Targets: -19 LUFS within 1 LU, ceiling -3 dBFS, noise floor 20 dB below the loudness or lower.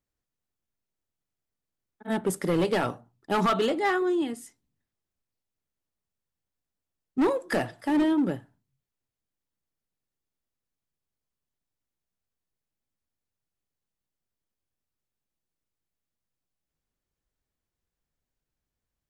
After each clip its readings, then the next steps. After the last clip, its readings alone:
clipped 0.7%; flat tops at -19.0 dBFS; loudness -27.0 LUFS; peak -19.0 dBFS; loudness target -19.0 LUFS
-> clip repair -19 dBFS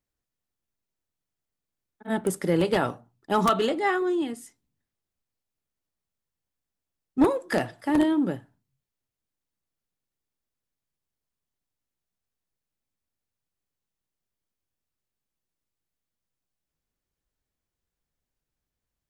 clipped 0.0%; loudness -25.5 LUFS; peak -10.0 dBFS; loudness target -19.0 LUFS
-> gain +6.5 dB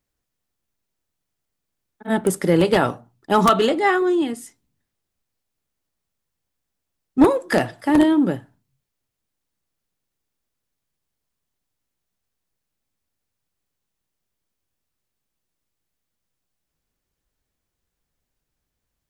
loudness -19.0 LUFS; peak -3.5 dBFS; noise floor -81 dBFS

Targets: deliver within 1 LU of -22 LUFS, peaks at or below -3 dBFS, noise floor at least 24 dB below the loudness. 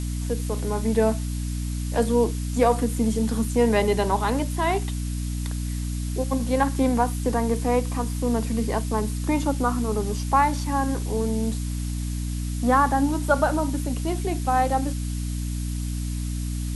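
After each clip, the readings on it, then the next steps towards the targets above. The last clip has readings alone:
hum 60 Hz; harmonics up to 300 Hz; hum level -25 dBFS; noise floor -28 dBFS; noise floor target -49 dBFS; loudness -24.5 LUFS; peak -7.0 dBFS; loudness target -22.0 LUFS
-> notches 60/120/180/240/300 Hz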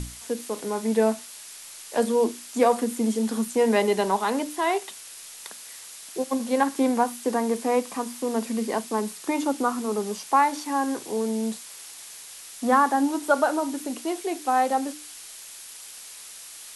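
hum none; noise floor -43 dBFS; noise floor target -49 dBFS
-> denoiser 6 dB, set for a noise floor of -43 dBFS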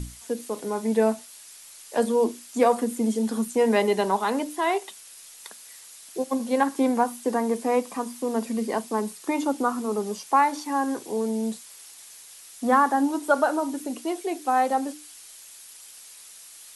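noise floor -47 dBFS; noise floor target -49 dBFS
-> denoiser 6 dB, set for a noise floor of -47 dBFS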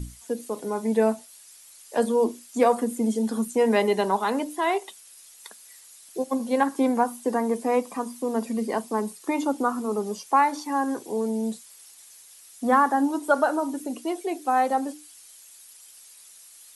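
noise floor -50 dBFS; loudness -25.5 LUFS; peak -7.0 dBFS; loudness target -22.0 LUFS
-> gain +3.5 dB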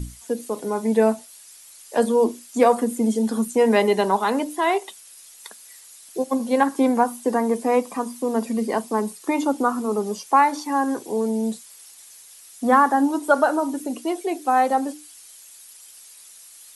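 loudness -22.0 LUFS; peak -3.5 dBFS; noise floor -46 dBFS

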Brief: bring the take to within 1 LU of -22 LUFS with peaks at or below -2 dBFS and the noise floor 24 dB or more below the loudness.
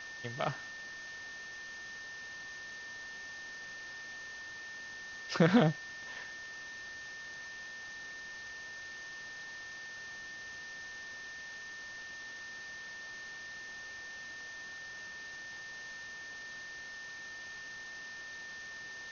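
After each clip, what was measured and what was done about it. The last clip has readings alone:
steady tone 1800 Hz; tone level -44 dBFS; noise floor -46 dBFS; noise floor target -65 dBFS; loudness -40.5 LUFS; peak -10.0 dBFS; loudness target -22.0 LUFS
-> notch 1800 Hz, Q 30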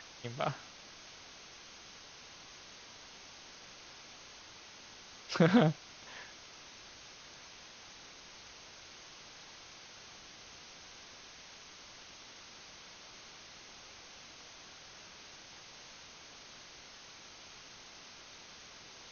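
steady tone none; noise floor -54 dBFS; noise floor target -66 dBFS
-> noise print and reduce 12 dB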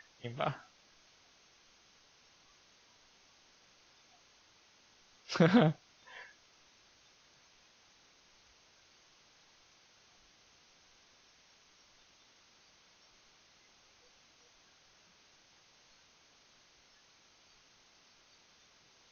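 noise floor -66 dBFS; loudness -32.5 LUFS; peak -10.0 dBFS; loudness target -22.0 LUFS
-> gain +10.5 dB; limiter -2 dBFS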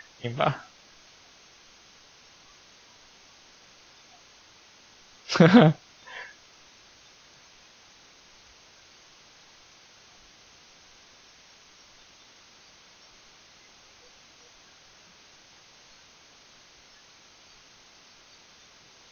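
loudness -22.0 LUFS; peak -2.0 dBFS; noise floor -55 dBFS

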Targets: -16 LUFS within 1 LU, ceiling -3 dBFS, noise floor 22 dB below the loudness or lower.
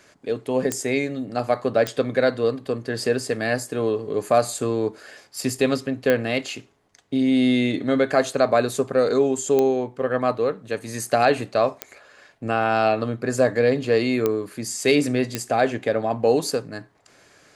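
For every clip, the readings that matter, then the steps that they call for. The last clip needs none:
clicks 7; loudness -22.5 LUFS; peak -4.0 dBFS; loudness target -16.0 LUFS
-> de-click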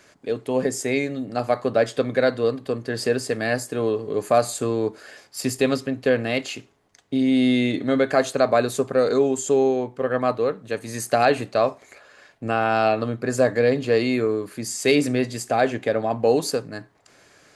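clicks 0; loudness -22.5 LUFS; peak -5.5 dBFS; loudness target -16.0 LUFS
-> gain +6.5 dB; limiter -3 dBFS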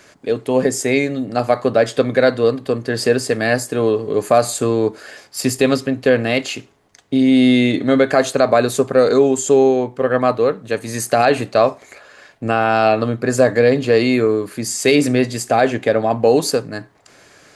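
loudness -16.5 LUFS; peak -3.0 dBFS; noise floor -49 dBFS

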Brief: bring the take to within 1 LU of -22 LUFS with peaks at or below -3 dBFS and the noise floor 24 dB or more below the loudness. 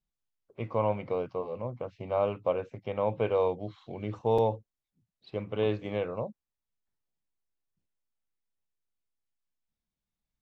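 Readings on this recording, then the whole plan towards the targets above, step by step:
dropouts 1; longest dropout 4.7 ms; loudness -31.5 LUFS; peak -15.5 dBFS; loudness target -22.0 LUFS
-> interpolate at 4.38, 4.7 ms; gain +9.5 dB

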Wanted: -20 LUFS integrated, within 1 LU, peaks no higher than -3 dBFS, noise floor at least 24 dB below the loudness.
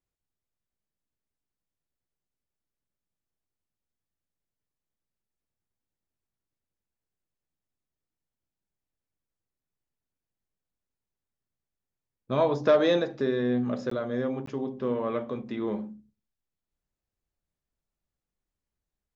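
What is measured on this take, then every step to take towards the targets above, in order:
dropouts 2; longest dropout 14 ms; loudness -28.0 LUFS; peak -11.5 dBFS; loudness target -20.0 LUFS
-> interpolate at 13.9/14.46, 14 ms; gain +8 dB

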